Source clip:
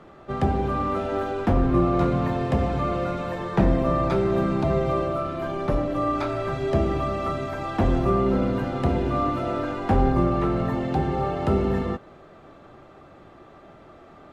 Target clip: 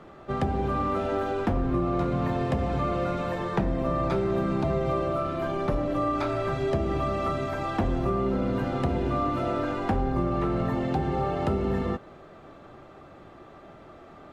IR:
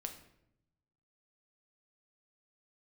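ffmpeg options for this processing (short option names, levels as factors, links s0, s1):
-af "acompressor=threshold=0.0794:ratio=6"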